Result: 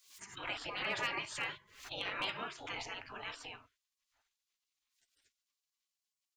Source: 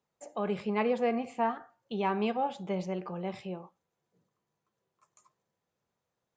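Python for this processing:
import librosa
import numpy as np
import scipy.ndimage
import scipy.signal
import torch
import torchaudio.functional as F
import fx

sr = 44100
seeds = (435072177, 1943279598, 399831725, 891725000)

y = fx.lowpass(x, sr, hz=3600.0, slope=6)
y = fx.notch(y, sr, hz=1100.0, q=5.7)
y = fx.spec_gate(y, sr, threshold_db=-25, keep='weak')
y = fx.high_shelf(y, sr, hz=2300.0, db=4.5, at=(1.0, 1.58))
y = np.clip(y, -10.0 ** (-38.5 / 20.0), 10.0 ** (-38.5 / 20.0))
y = fx.pre_swell(y, sr, db_per_s=99.0)
y = F.gain(torch.from_numpy(y), 11.5).numpy()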